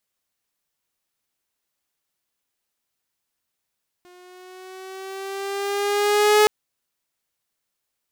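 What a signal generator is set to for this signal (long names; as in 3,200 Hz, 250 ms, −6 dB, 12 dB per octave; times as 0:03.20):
pitch glide with a swell saw, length 2.42 s, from 357 Hz, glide +3 semitones, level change +35.5 dB, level −9 dB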